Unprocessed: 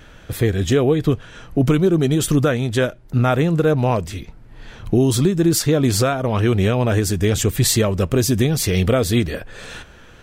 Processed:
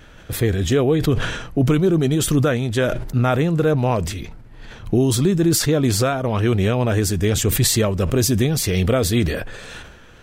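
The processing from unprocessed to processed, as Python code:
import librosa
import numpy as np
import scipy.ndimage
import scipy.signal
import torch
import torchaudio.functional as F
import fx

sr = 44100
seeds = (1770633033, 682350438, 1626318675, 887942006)

y = fx.sustainer(x, sr, db_per_s=52.0)
y = F.gain(torch.from_numpy(y), -1.5).numpy()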